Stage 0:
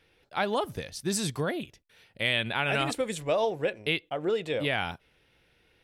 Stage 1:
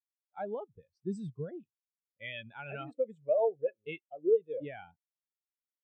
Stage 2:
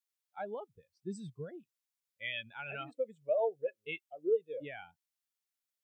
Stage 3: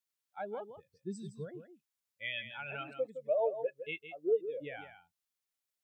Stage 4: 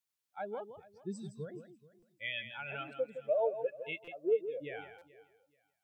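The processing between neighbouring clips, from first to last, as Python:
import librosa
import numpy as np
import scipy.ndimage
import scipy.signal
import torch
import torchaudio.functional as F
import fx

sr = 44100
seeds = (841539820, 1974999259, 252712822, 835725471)

y1 = scipy.signal.sosfilt(scipy.signal.butter(6, 9100.0, 'lowpass', fs=sr, output='sos'), x)
y1 = fx.spectral_expand(y1, sr, expansion=2.5)
y1 = y1 * 10.0 ** (-5.0 / 20.0)
y2 = fx.tilt_shelf(y1, sr, db=-5.5, hz=1100.0)
y3 = y2 + 10.0 ** (-10.0 / 20.0) * np.pad(y2, (int(163 * sr / 1000.0), 0))[:len(y2)]
y4 = fx.echo_feedback(y3, sr, ms=431, feedback_pct=25, wet_db=-20)
y4 = fx.buffer_glitch(y4, sr, at_s=(1.99, 4.04, 4.98), block=256, repeats=5)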